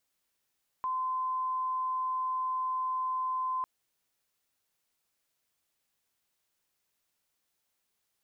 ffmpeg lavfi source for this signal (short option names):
-f lavfi -i "aevalsrc='0.0355*sin(2*PI*1030*t)':d=2.8:s=44100"